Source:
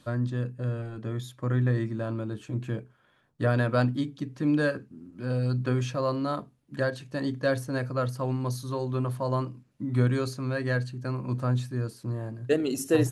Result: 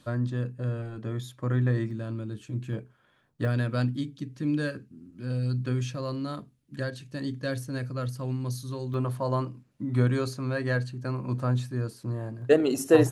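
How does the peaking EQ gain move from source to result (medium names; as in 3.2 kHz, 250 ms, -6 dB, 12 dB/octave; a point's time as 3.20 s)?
peaking EQ 810 Hz 2.1 oct
-0.5 dB
from 1.91 s -9.5 dB
from 2.73 s -1 dB
from 3.45 s -9.5 dB
from 8.94 s +0.5 dB
from 12.42 s +8 dB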